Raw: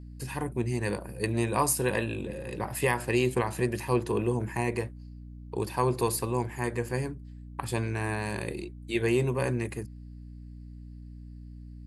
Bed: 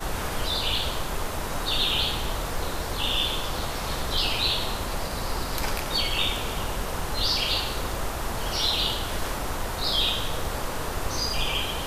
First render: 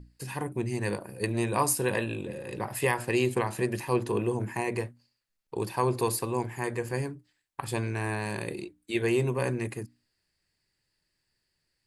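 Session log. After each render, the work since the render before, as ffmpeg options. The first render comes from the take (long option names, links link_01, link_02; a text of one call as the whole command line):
ffmpeg -i in.wav -af "bandreject=frequency=60:width_type=h:width=6,bandreject=frequency=120:width_type=h:width=6,bandreject=frequency=180:width_type=h:width=6,bandreject=frequency=240:width_type=h:width=6,bandreject=frequency=300:width_type=h:width=6" out.wav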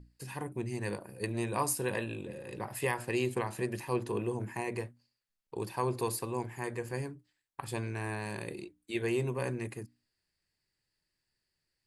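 ffmpeg -i in.wav -af "volume=-5.5dB" out.wav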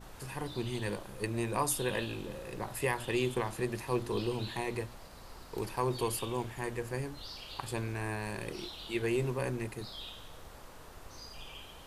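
ffmpeg -i in.wav -i bed.wav -filter_complex "[1:a]volume=-21dB[link_01];[0:a][link_01]amix=inputs=2:normalize=0" out.wav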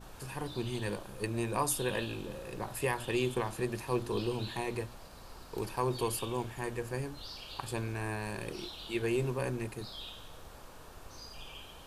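ffmpeg -i in.wav -af "bandreject=frequency=2000:width=12" out.wav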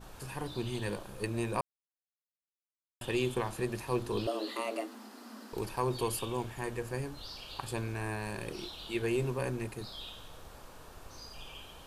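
ffmpeg -i in.wav -filter_complex "[0:a]asettb=1/sr,asplit=3[link_01][link_02][link_03];[link_01]atrim=end=4.274[link_04];[link_02]atrim=start=4.27:end=5.53,asetpts=PTS-STARTPTS,afade=type=in:duration=0.004:curve=qsin,afade=type=out:start_time=1.256:duration=0.004:curve=qsin,afreqshift=210[link_05];[link_03]atrim=start=5.526[link_06];[link_04][link_05]acrossfade=duration=0.004:curve1=hsin:curve2=qsin[link_07];[link_07][link_06]acrossfade=duration=0.004:curve1=qsin:curve2=hsin,asplit=3[link_08][link_09][link_10];[link_08]atrim=end=1.61,asetpts=PTS-STARTPTS,afade=type=out:start_time=1.606:duration=0.004:curve=hsin[link_11];[link_09]atrim=start=1.61:end=3.01,asetpts=PTS-STARTPTS,volume=0[link_12];[link_10]atrim=start=3.01,asetpts=PTS-STARTPTS,afade=type=in:duration=0.004:curve=hsin[link_13];[link_11][link_12][link_13]concat=n=3:v=0:a=1" out.wav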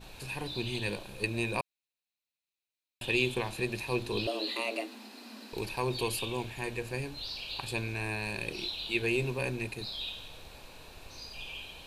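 ffmpeg -i in.wav -af "equalizer=frequency=1250:width_type=o:width=0.33:gain=-7,equalizer=frequency=2500:width_type=o:width=0.33:gain=12,equalizer=frequency=4000:width_type=o:width=0.33:gain=11" out.wav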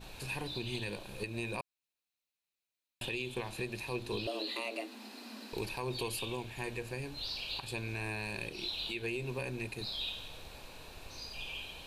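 ffmpeg -i in.wav -af "alimiter=level_in=2.5dB:limit=-24dB:level=0:latency=1:release=294,volume=-2.5dB" out.wav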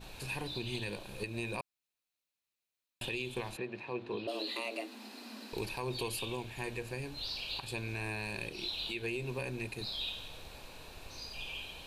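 ffmpeg -i in.wav -filter_complex "[0:a]asplit=3[link_01][link_02][link_03];[link_01]afade=type=out:start_time=3.56:duration=0.02[link_04];[link_02]highpass=170,lowpass=2200,afade=type=in:start_time=3.56:duration=0.02,afade=type=out:start_time=4.27:duration=0.02[link_05];[link_03]afade=type=in:start_time=4.27:duration=0.02[link_06];[link_04][link_05][link_06]amix=inputs=3:normalize=0" out.wav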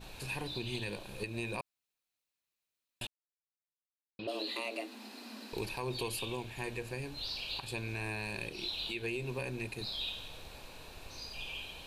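ffmpeg -i in.wav -filter_complex "[0:a]asplit=3[link_01][link_02][link_03];[link_01]atrim=end=3.07,asetpts=PTS-STARTPTS,afade=type=out:start_time=3.066:duration=0.004:curve=hsin[link_04];[link_02]atrim=start=3.07:end=4.19,asetpts=PTS-STARTPTS,volume=0[link_05];[link_03]atrim=start=4.19,asetpts=PTS-STARTPTS,afade=type=in:duration=0.004:curve=hsin[link_06];[link_04][link_05][link_06]concat=n=3:v=0:a=1" out.wav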